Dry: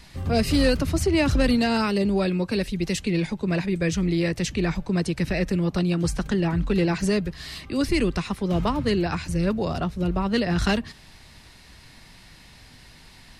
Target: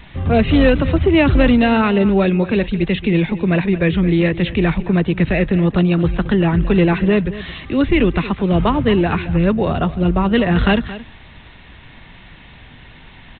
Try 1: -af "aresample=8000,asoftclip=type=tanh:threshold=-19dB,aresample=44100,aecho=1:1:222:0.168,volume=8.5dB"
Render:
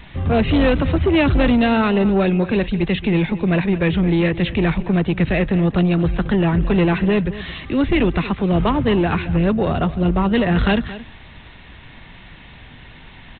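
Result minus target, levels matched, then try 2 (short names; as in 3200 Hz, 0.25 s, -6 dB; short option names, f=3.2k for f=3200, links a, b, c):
soft clip: distortion +14 dB
-af "aresample=8000,asoftclip=type=tanh:threshold=-9.5dB,aresample=44100,aecho=1:1:222:0.168,volume=8.5dB"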